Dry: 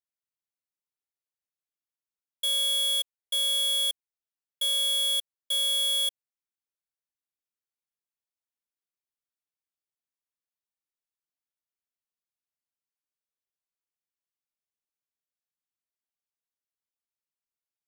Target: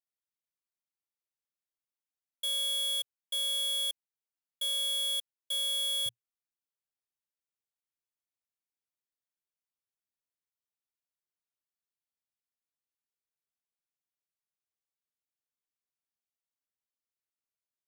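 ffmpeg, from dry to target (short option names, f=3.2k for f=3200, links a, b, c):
-af "asetnsamples=n=441:p=0,asendcmd='6.06 equalizer g 5.5',equalizer=f=120:t=o:w=0.31:g=-4.5,volume=-5.5dB"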